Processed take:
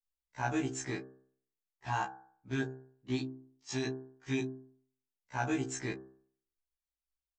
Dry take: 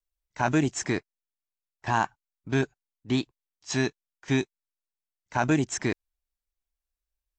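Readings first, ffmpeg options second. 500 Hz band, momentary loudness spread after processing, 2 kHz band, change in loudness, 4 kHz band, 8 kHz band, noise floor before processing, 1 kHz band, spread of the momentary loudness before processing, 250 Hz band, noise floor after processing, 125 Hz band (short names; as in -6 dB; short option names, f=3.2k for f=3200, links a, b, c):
-8.5 dB, 16 LU, -8.5 dB, -9.0 dB, -8.5 dB, -8.0 dB, under -85 dBFS, -8.0 dB, 13 LU, -8.5 dB, under -85 dBFS, -9.0 dB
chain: -filter_complex "[0:a]asplit=2[a][b];[b]adelay=18,volume=-11.5dB[c];[a][c]amix=inputs=2:normalize=0,bandreject=f=65.26:t=h:w=4,bandreject=f=130.52:t=h:w=4,bandreject=f=195.78:t=h:w=4,bandreject=f=261.04:t=h:w=4,bandreject=f=326.3:t=h:w=4,bandreject=f=391.56:t=h:w=4,bandreject=f=456.82:t=h:w=4,bandreject=f=522.08:t=h:w=4,bandreject=f=587.34:t=h:w=4,bandreject=f=652.6:t=h:w=4,bandreject=f=717.86:t=h:w=4,bandreject=f=783.12:t=h:w=4,bandreject=f=848.38:t=h:w=4,bandreject=f=913.64:t=h:w=4,bandreject=f=978.9:t=h:w=4,bandreject=f=1.04416k:t=h:w=4,bandreject=f=1.10942k:t=h:w=4,bandreject=f=1.17468k:t=h:w=4,bandreject=f=1.23994k:t=h:w=4,bandreject=f=1.3052k:t=h:w=4,bandreject=f=1.37046k:t=h:w=4,bandreject=f=1.43572k:t=h:w=4,bandreject=f=1.50098k:t=h:w=4,bandreject=f=1.56624k:t=h:w=4,bandreject=f=1.6315k:t=h:w=4,bandreject=f=1.69676k:t=h:w=4,bandreject=f=1.76202k:t=h:w=4,afftfilt=real='re*1.73*eq(mod(b,3),0)':imag='im*1.73*eq(mod(b,3),0)':win_size=2048:overlap=0.75,volume=-6.5dB"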